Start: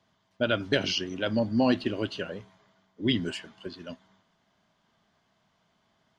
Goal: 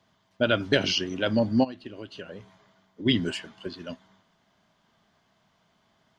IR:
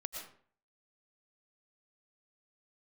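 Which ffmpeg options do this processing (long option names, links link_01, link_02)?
-filter_complex "[0:a]asplit=3[link_01][link_02][link_03];[link_01]afade=type=out:start_time=1.63:duration=0.02[link_04];[link_02]acompressor=threshold=-38dB:ratio=12,afade=type=in:start_time=1.63:duration=0.02,afade=type=out:start_time=3.05:duration=0.02[link_05];[link_03]afade=type=in:start_time=3.05:duration=0.02[link_06];[link_04][link_05][link_06]amix=inputs=3:normalize=0,volume=3dB"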